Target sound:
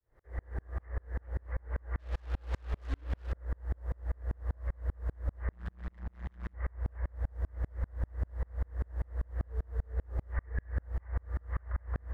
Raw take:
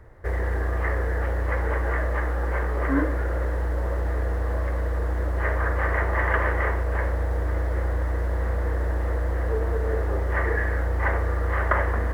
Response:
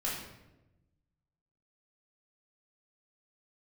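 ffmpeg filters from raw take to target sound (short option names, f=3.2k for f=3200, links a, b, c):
-filter_complex "[0:a]asubboost=boost=6:cutoff=110,acrossover=split=110[a][b];[b]alimiter=limit=-18dB:level=0:latency=1:release=242[c];[a][c]amix=inputs=2:normalize=0,acrossover=split=150|2300[d][e][f];[d]acompressor=threshold=-18dB:ratio=4[g];[e]acompressor=threshold=-30dB:ratio=4[h];[f]acompressor=threshold=-56dB:ratio=4[i];[g][h][i]amix=inputs=3:normalize=0,asplit=3[j][k][l];[j]afade=t=out:st=1.98:d=0.02[m];[k]acrusher=bits=4:mix=0:aa=0.5,afade=t=in:st=1.98:d=0.02,afade=t=out:st=3.31:d=0.02[n];[l]afade=t=in:st=3.31:d=0.02[o];[m][n][o]amix=inputs=3:normalize=0,asettb=1/sr,asplit=3[p][q][r];[p]atrim=end=5.524[s];[q]atrim=start=5.52:end=6.54,asetpts=PTS-STARTPTS,afade=t=in:d=0.004:c=qsin,afade=t=out:st=1.016:d=0.004:c=qsin,asoftclip=type=hard:threshold=-22.5dB[t];[r]atrim=start=6.536[u];[s][t]acrossfade=d=0.004:c1=hsin:c2=qsin[v];[v][u]acrossfade=d=0.004:c1=qsin:c2=hsin,aeval=exprs='val(0)*pow(10,-38*if(lt(mod(-5.1*n/s,1),2*abs(-5.1)/1000),1-mod(-5.1*n/s,1)/(2*abs(-5.1)/1000),(mod(-5.1*n/s,1)-2*abs(-5.1)/1000)/(1-2*abs(-5.1)/1000))/20)':c=same,volume=-8dB"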